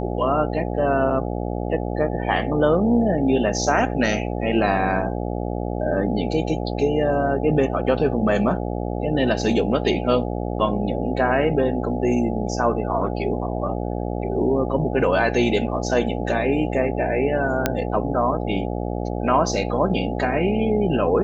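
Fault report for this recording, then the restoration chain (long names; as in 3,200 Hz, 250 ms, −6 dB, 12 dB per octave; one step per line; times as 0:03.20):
mains buzz 60 Hz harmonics 14 −26 dBFS
0:17.66: click −4 dBFS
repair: click removal
hum removal 60 Hz, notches 14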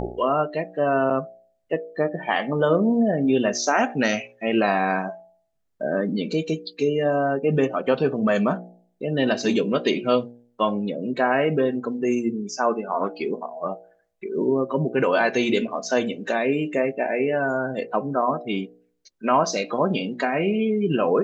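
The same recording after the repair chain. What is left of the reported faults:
none of them is left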